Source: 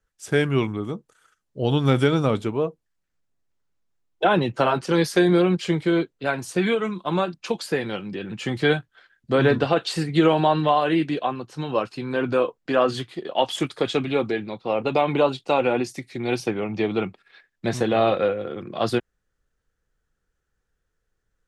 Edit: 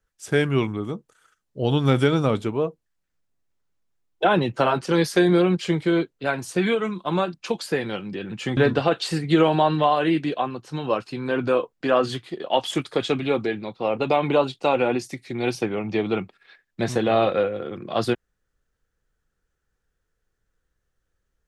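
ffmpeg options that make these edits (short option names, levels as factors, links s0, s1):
-filter_complex "[0:a]asplit=2[s0][s1];[s0]atrim=end=8.572[s2];[s1]atrim=start=9.418[s3];[s2][s3]acrossfade=d=0.004:c1=hsin:c2=hsin"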